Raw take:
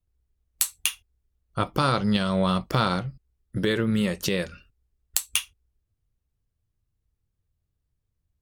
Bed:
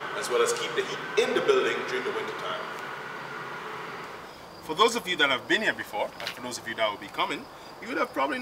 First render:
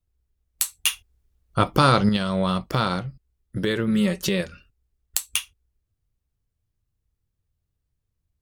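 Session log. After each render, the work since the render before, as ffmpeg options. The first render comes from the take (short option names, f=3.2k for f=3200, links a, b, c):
-filter_complex "[0:a]asettb=1/sr,asplit=3[a][b][c];[a]atrim=end=0.864[d];[b]atrim=start=0.86:end=2.09,asetpts=PTS-STARTPTS,afade=t=in:d=0.004:c=qsin,afade=t=out:st=1.226:d=0.004:c=qsin,acontrast=56[e];[c]atrim=start=2.086[f];[d][e]acrossfade=d=0.004:c1=hsin:c2=qsin[g];[g][f]acrossfade=d=0.004:c1=qsin:c2=hsin,asettb=1/sr,asplit=3[h][i][j];[h]atrim=end=3.874[k];[i]atrim=start=3.87:end=4.41,asetpts=PTS-STARTPTS,afade=t=in:d=0.004:c=qsin,afade=t=out:st=0.536:d=0.004:c=qsin,aecho=1:1:5.3:0.65,atrim=end_sample=23814[l];[j]atrim=start=4.406[m];[k][l]acrossfade=d=0.004:c1=hsin:c2=qsin[n];[n][m]acrossfade=d=0.004:c1=qsin:c2=hsin"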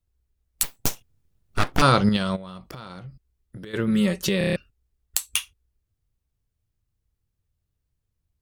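-filter_complex "[0:a]asettb=1/sr,asplit=3[a][b][c];[a]atrim=end=0.634[d];[b]atrim=start=0.63:end=1.82,asetpts=PTS-STARTPTS,afade=t=in:d=0.004:c=qsin,afade=t=out:st=1.186:d=0.004:c=qsin,aeval=exprs='abs(val(0))':c=same[e];[c]atrim=start=1.816[f];[d][e]acrossfade=d=0.004:c1=hsin:c2=qsin[g];[g][f]acrossfade=d=0.004:c1=qsin:c2=hsin,asplit=3[h][i][j];[h]afade=t=out:st=2.35:d=0.02[k];[i]acompressor=threshold=-35dB:ratio=12:attack=3.2:release=140:knee=1:detection=peak,afade=t=in:st=2.35:d=0.02,afade=t=out:st=3.73:d=0.02[l];[j]afade=t=in:st=3.73:d=0.02[m];[k][l][m]amix=inputs=3:normalize=0,asplit=7[n][o][p][q][r][s][t];[n]atrim=end=4.412[u];[o]atrim=start=4.378:end=4.412[v];[p]atrim=start=4.378:end=4.412[w];[q]atrim=start=4.378:end=4.412[x];[r]atrim=start=4.378:end=4.412[y];[s]atrim=start=4.378:end=4.412[z];[t]atrim=start=4.558[aa];[u][v]acrossfade=d=0.004:c1=hsin:c2=hsin[ab];[ab][w]acrossfade=d=0.004:c1=hsin:c2=hsin[ac];[ac][x]acrossfade=d=0.004:c1=hsin:c2=hsin[ad];[ad][y]acrossfade=d=0.004:c1=hsin:c2=hsin[ae];[ae][z]acrossfade=d=0.004:c1=hsin:c2=hsin[af];[af][aa]acrossfade=d=0.004:c1=hsin:c2=hsin"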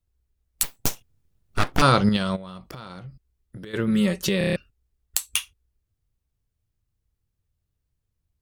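-af anull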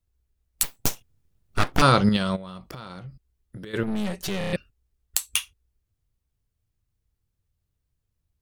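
-filter_complex "[0:a]asettb=1/sr,asplit=3[a][b][c];[a]atrim=end=3.834[d];[b]atrim=start=3.83:end=4.53,asetpts=PTS-STARTPTS,afade=t=in:d=0.004:c=qsin,afade=t=out:st=0.696:d=0.004:c=qsin,aeval=exprs='(tanh(17.8*val(0)+0.7)-tanh(0.7))/17.8':c=same[e];[c]atrim=start=4.526[f];[d][e]acrossfade=d=0.004:c1=hsin:c2=qsin[g];[g][f]acrossfade=d=0.004:c1=qsin:c2=hsin"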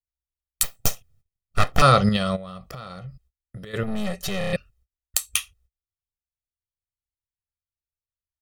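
-af "agate=range=-28dB:threshold=-59dB:ratio=16:detection=peak,aecho=1:1:1.6:0.63"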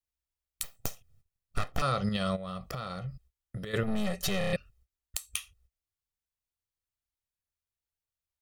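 -af "acompressor=threshold=-25dB:ratio=12,alimiter=limit=-13dB:level=0:latency=1:release=346"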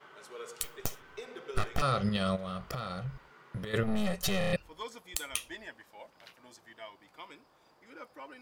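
-filter_complex "[1:a]volume=-20.5dB[a];[0:a][a]amix=inputs=2:normalize=0"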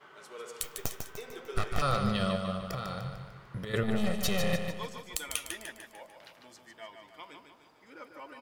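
-af "aecho=1:1:149|298|447|596|745|894:0.473|0.227|0.109|0.0523|0.0251|0.0121"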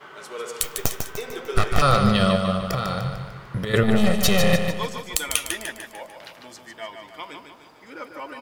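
-af "volume=11dB"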